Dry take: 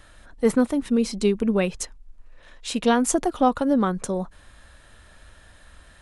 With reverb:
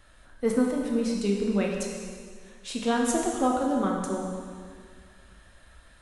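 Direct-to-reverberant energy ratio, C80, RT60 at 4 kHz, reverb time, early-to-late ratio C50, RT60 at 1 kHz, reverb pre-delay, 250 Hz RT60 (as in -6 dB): -1.0 dB, 3.0 dB, 1.9 s, 2.0 s, 1.5 dB, 2.0 s, 6 ms, 2.1 s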